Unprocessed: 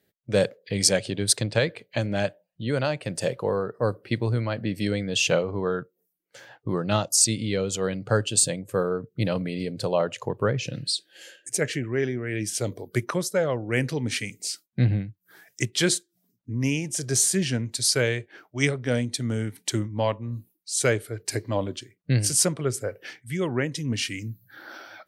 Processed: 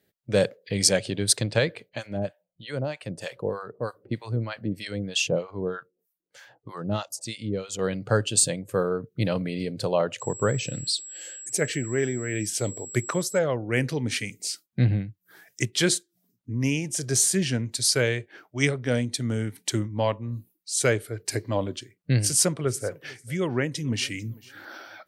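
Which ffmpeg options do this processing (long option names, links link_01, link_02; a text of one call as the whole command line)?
ffmpeg -i in.wav -filter_complex "[0:a]asettb=1/sr,asplit=3[link_01][link_02][link_03];[link_01]atrim=end=1.894[link_04];[link_02]atrim=start=1.89:end=7.79,asetpts=PTS-STARTPTS,afade=type=in:duration=0.004:curve=qsin,afade=type=out:start_time=5.896:duration=0.004:curve=qsin,acrossover=split=740[link_05][link_06];[link_05]aeval=exprs='val(0)*(1-1/2+1/2*cos(2*PI*3.2*n/s))':channel_layout=same[link_07];[link_06]aeval=exprs='val(0)*(1-1/2-1/2*cos(2*PI*3.2*n/s))':channel_layout=same[link_08];[link_07][link_08]amix=inputs=2:normalize=0[link_09];[link_03]atrim=start=7.786[link_10];[link_04][link_09]acrossfade=duration=0.004:curve1=hsin:curve2=qsin[link_11];[link_11][link_10]acrossfade=duration=0.004:curve1=qsin:curve2=hsin,asettb=1/sr,asplit=3[link_12][link_13][link_14];[link_12]atrim=end=10.204[link_15];[link_13]atrim=start=10.2:end=13.39,asetpts=PTS-STARTPTS,afade=type=in:duration=0.004:curve=qsin,afade=type=out:start_time=3.186:duration=0.004:curve=qsin,aeval=exprs='val(0)+0.0126*sin(2*PI*7700*n/s)':channel_layout=same[link_16];[link_14]atrim=start=13.386[link_17];[link_15][link_16]acrossfade=duration=0.004:curve1=hsin:curve2=qsin[link_18];[link_18][link_17]acrossfade=duration=0.004:curve1=qsin:curve2=hsin,asettb=1/sr,asplit=3[link_19][link_20][link_21];[link_19]atrim=end=22.194[link_22];[link_20]atrim=start=22.19:end=24.65,asetpts=PTS-STARTPTS,afade=type=in:duration=0.004:curve=qsin,afade=type=out:start_time=2.456:duration=0.004:curve=qsin,aecho=1:1:447|894:0.0708|0.0156,atrim=end_sample=108486[link_23];[link_21]atrim=start=24.646[link_24];[link_22][link_23]acrossfade=duration=0.004:curve1=hsin:curve2=qsin[link_25];[link_25][link_24]acrossfade=duration=0.004:curve1=qsin:curve2=hsin" out.wav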